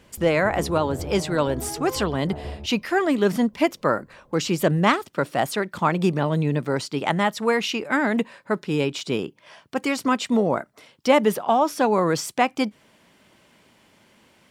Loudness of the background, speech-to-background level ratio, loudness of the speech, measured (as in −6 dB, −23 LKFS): −35.5 LKFS, 12.5 dB, −23.0 LKFS